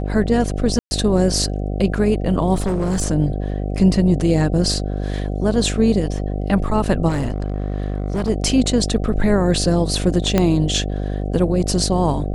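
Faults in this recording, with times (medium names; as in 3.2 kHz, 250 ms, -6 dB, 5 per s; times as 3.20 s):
buzz 50 Hz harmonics 15 -23 dBFS
0.79–0.91 s: dropout 120 ms
2.54–3.02 s: clipped -16 dBFS
7.08–8.30 s: clipped -17 dBFS
10.38 s: pop -3 dBFS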